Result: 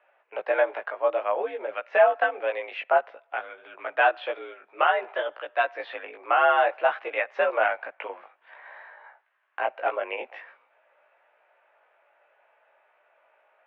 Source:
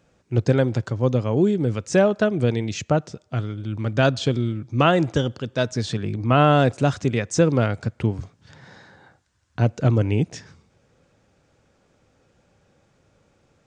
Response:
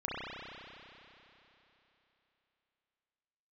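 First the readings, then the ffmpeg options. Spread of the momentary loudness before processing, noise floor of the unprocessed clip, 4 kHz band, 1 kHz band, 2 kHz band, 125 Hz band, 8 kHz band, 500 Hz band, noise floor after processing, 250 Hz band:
9 LU, −64 dBFS, −8.0 dB, +2.0 dB, +3.0 dB, below −40 dB, below −40 dB, −3.0 dB, −66 dBFS, −26.5 dB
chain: -af "highpass=frequency=560:width_type=q:width=0.5412,highpass=frequency=560:width_type=q:width=1.307,lowpass=frequency=2600:width_type=q:width=0.5176,lowpass=frequency=2600:width_type=q:width=0.7071,lowpass=frequency=2600:width_type=q:width=1.932,afreqshift=70,alimiter=limit=-13.5dB:level=0:latency=1:release=447,flanger=delay=16.5:depth=2.7:speed=0.54,volume=7dB"

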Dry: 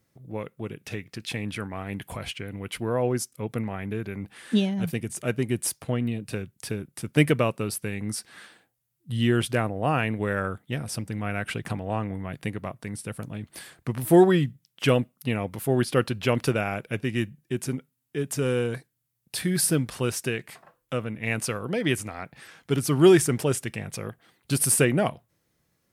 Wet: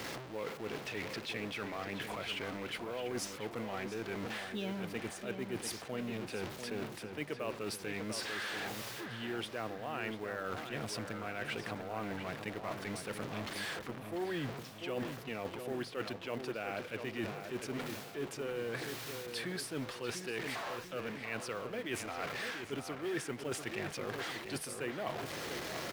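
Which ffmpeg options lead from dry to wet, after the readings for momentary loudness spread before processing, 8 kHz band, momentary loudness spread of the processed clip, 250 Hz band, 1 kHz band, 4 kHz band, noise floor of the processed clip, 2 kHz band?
15 LU, −15.0 dB, 3 LU, −15.0 dB, −9.0 dB, −7.0 dB, −48 dBFS, −7.5 dB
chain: -filter_complex "[0:a]aeval=exprs='val(0)+0.5*0.0266*sgn(val(0))':channel_layout=same,acrossover=split=280 5500:gain=0.2 1 0.2[link_01][link_02][link_03];[link_01][link_02][link_03]amix=inputs=3:normalize=0,areverse,acompressor=threshold=-39dB:ratio=8,areverse,acrusher=bits=6:mode=log:mix=0:aa=0.000001,asplit=2[link_04][link_05];[link_05]adelay=693,lowpass=frequency=2800:poles=1,volume=-7dB,asplit=2[link_06][link_07];[link_07]adelay=693,lowpass=frequency=2800:poles=1,volume=0.48,asplit=2[link_08][link_09];[link_09]adelay=693,lowpass=frequency=2800:poles=1,volume=0.48,asplit=2[link_10][link_11];[link_11]adelay=693,lowpass=frequency=2800:poles=1,volume=0.48,asplit=2[link_12][link_13];[link_13]adelay=693,lowpass=frequency=2800:poles=1,volume=0.48,asplit=2[link_14][link_15];[link_15]adelay=693,lowpass=frequency=2800:poles=1,volume=0.48[link_16];[link_04][link_06][link_08][link_10][link_12][link_14][link_16]amix=inputs=7:normalize=0,volume=2dB"

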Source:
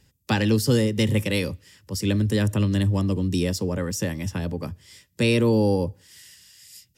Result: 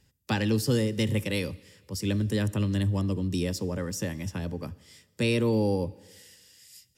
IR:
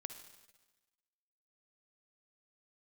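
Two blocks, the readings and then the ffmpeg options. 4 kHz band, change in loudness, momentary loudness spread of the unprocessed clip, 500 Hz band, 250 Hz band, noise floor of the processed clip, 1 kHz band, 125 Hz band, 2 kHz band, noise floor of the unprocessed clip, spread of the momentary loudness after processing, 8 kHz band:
−5.0 dB, −5.0 dB, 11 LU, −5.0 dB, −5.0 dB, −68 dBFS, −5.0 dB, −5.0 dB, −5.0 dB, −66 dBFS, 11 LU, −5.0 dB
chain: -filter_complex "[0:a]asplit=2[link_01][link_02];[1:a]atrim=start_sample=2205,asetrate=39249,aresample=44100[link_03];[link_02][link_03]afir=irnorm=-1:irlink=0,volume=-8dB[link_04];[link_01][link_04]amix=inputs=2:normalize=0,volume=-7dB"

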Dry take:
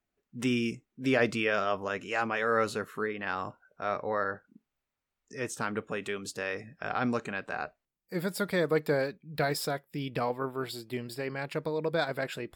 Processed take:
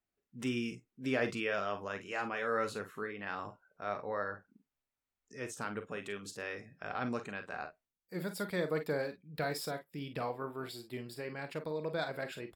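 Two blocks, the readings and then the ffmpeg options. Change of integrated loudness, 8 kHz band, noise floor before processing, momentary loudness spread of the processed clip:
−6.5 dB, −6.5 dB, below −85 dBFS, 10 LU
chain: -af "aecho=1:1:39|50:0.282|0.251,volume=-7dB"

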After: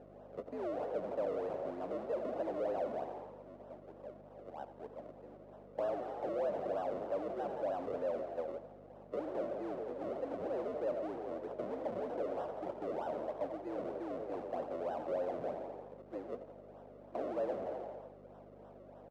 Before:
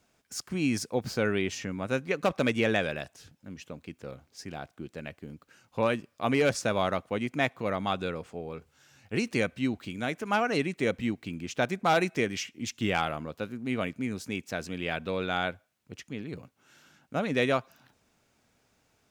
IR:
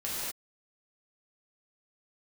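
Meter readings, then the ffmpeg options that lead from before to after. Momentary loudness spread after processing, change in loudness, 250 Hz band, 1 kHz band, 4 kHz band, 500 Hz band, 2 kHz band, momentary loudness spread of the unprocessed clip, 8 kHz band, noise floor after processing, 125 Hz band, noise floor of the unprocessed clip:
15 LU, −9.5 dB, −13.5 dB, −9.5 dB, below −25 dB, −5.5 dB, −23.5 dB, 16 LU, below −30 dB, −56 dBFS, −20.0 dB, −71 dBFS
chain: -filter_complex "[0:a]aeval=exprs='val(0)+0.5*0.02*sgn(val(0))':channel_layout=same,agate=range=-20dB:threshold=-31dB:ratio=16:detection=peak,acrusher=samples=39:mix=1:aa=0.000001:lfo=1:lforange=39:lforate=3.2,asplit=7[link_01][link_02][link_03][link_04][link_05][link_06][link_07];[link_02]adelay=85,afreqshift=51,volume=-16dB[link_08];[link_03]adelay=170,afreqshift=102,volume=-20.4dB[link_09];[link_04]adelay=255,afreqshift=153,volume=-24.9dB[link_10];[link_05]adelay=340,afreqshift=204,volume=-29.3dB[link_11];[link_06]adelay=425,afreqshift=255,volume=-33.7dB[link_12];[link_07]adelay=510,afreqshift=306,volume=-38.2dB[link_13];[link_01][link_08][link_09][link_10][link_11][link_12][link_13]amix=inputs=7:normalize=0,asoftclip=type=tanh:threshold=-26.5dB,alimiter=level_in=10dB:limit=-24dB:level=0:latency=1:release=20,volume=-10dB,acompressor=threshold=-43dB:ratio=2.5,afreqshift=75,aeval=exprs='val(0)+0.00447*(sin(2*PI*50*n/s)+sin(2*PI*2*50*n/s)/2+sin(2*PI*3*50*n/s)/3+sin(2*PI*4*50*n/s)/4+sin(2*PI*5*50*n/s)/5)':channel_layout=same,bandpass=frequency=580:width_type=q:width=2.8:csg=0,volume=11dB"

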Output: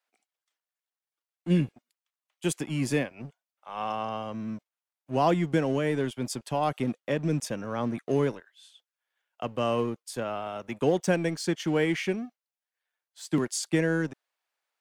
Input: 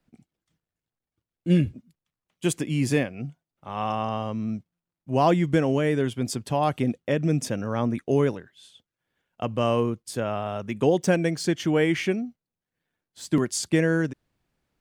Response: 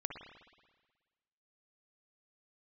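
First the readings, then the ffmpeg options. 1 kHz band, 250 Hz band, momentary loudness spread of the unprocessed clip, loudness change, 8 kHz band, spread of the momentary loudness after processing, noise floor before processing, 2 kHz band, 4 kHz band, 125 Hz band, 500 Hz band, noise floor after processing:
−3.0 dB, −4.0 dB, 9 LU, −4.0 dB, −3.0 dB, 11 LU, below −85 dBFS, −3.0 dB, −3.0 dB, −5.0 dB, −3.5 dB, below −85 dBFS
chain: -filter_complex "[0:a]highpass=frequency=120:width=0.5412,highpass=frequency=120:width=1.3066,acrossover=split=590|4100[link_01][link_02][link_03];[link_01]aeval=exprs='sgn(val(0))*max(abs(val(0))-0.00944,0)':channel_layout=same[link_04];[link_04][link_02][link_03]amix=inputs=3:normalize=0,volume=-3dB"

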